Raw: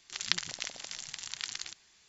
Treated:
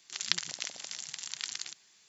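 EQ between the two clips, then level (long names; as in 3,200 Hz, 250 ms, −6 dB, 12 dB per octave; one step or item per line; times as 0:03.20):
high-pass filter 120 Hz 24 dB per octave
high-shelf EQ 5,800 Hz +7 dB
−2.0 dB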